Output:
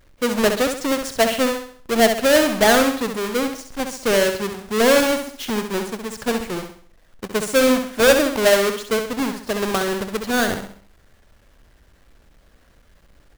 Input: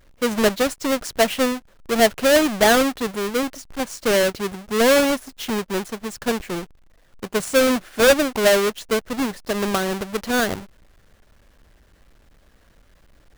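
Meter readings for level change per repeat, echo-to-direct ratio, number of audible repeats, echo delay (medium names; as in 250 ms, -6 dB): -7.5 dB, -6.0 dB, 4, 66 ms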